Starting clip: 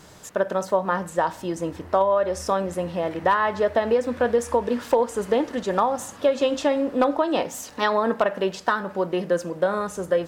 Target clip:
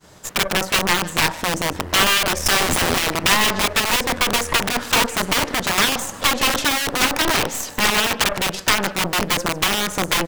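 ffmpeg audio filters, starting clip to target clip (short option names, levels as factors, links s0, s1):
-filter_complex "[0:a]agate=range=0.0224:threshold=0.01:ratio=3:detection=peak,asplit=3[s0][s1][s2];[s0]afade=t=out:st=2.45:d=0.02[s3];[s1]bass=f=250:g=13,treble=f=4000:g=14,afade=t=in:st=2.45:d=0.02,afade=t=out:st=3.02:d=0.02[s4];[s2]afade=t=in:st=3.02:d=0.02[s5];[s3][s4][s5]amix=inputs=3:normalize=0,asplit=2[s6][s7];[s7]acompressor=threshold=0.0158:ratio=5,volume=0.794[s8];[s6][s8]amix=inputs=2:normalize=0,aeval=exprs='0.473*(cos(1*acos(clip(val(0)/0.473,-1,1)))-cos(1*PI/2))+0.0841*(cos(2*acos(clip(val(0)/0.473,-1,1)))-cos(2*PI/2))+0.0106*(cos(3*acos(clip(val(0)/0.473,-1,1)))-cos(3*PI/2))+0.0841*(cos(6*acos(clip(val(0)/0.473,-1,1)))-cos(6*PI/2))+0.15*(cos(8*acos(clip(val(0)/0.473,-1,1)))-cos(8*PI/2))':c=same,acrossover=split=1200[s9][s10];[s9]aeval=exprs='(mod(6.68*val(0)+1,2)-1)/6.68':c=same[s11];[s10]aecho=1:1:150:0.15[s12];[s11][s12]amix=inputs=2:normalize=0,volume=1.88"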